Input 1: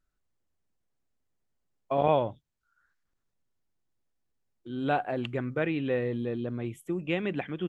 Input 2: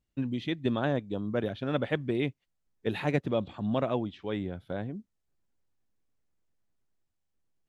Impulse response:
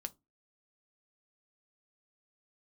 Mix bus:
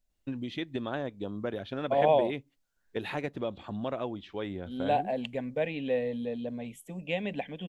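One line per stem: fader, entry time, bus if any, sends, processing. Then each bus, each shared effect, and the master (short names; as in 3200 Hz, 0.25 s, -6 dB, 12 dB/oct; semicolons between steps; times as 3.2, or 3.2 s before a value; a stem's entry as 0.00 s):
+2.5 dB, 0.00 s, no send, fixed phaser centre 350 Hz, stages 6
-0.5 dB, 0.10 s, send -8.5 dB, compressor 3:1, threshold -31 dBFS, peak gain reduction 7.5 dB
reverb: on, RT60 0.20 s, pre-delay 5 ms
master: bell 150 Hz -6.5 dB 1.2 oct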